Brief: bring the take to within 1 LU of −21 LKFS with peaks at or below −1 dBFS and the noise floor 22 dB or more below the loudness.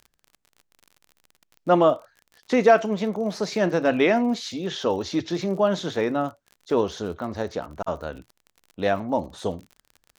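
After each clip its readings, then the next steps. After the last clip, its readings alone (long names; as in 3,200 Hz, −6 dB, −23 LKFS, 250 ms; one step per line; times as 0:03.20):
crackle rate 42 per second; integrated loudness −24.0 LKFS; sample peak −4.5 dBFS; target loudness −21.0 LKFS
→ click removal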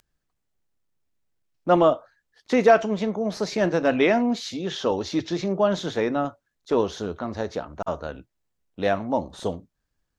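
crackle rate 0.20 per second; integrated loudness −24.0 LKFS; sample peak −4.5 dBFS; target loudness −21.0 LKFS
→ level +3 dB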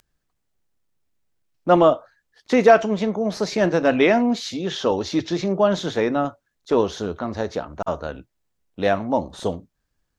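integrated loudness −21.0 LKFS; sample peak −1.5 dBFS; background noise floor −75 dBFS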